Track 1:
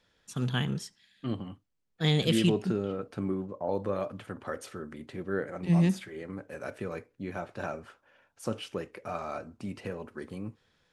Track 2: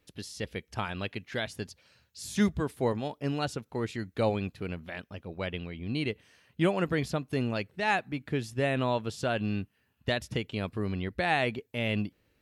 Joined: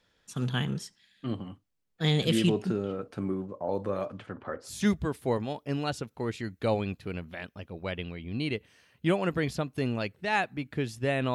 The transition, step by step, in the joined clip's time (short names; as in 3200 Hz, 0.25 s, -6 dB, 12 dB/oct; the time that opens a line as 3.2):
track 1
4.05–4.73 LPF 10000 Hz -> 1100 Hz
4.66 switch to track 2 from 2.21 s, crossfade 0.14 s